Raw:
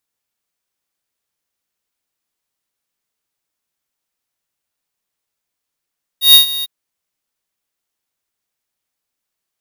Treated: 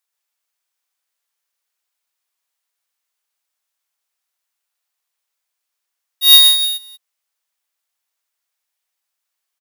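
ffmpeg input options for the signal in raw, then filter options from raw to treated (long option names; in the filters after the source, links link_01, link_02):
-f lavfi -i "aevalsrc='0.631*(2*lt(mod(3750*t,1),0.5)-1)':duration=0.453:sample_rate=44100,afade=type=in:duration=0.129,afade=type=out:start_time=0.129:duration=0.115:silence=0.141,afade=type=out:start_time=0.43:duration=0.023"
-filter_complex "[0:a]highpass=690,asplit=2[link_01][link_02];[link_02]aecho=0:1:123|311:0.596|0.133[link_03];[link_01][link_03]amix=inputs=2:normalize=0"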